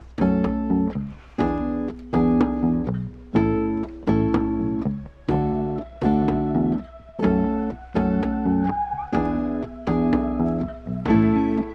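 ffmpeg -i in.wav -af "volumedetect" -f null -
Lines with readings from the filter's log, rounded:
mean_volume: -22.2 dB
max_volume: -6.9 dB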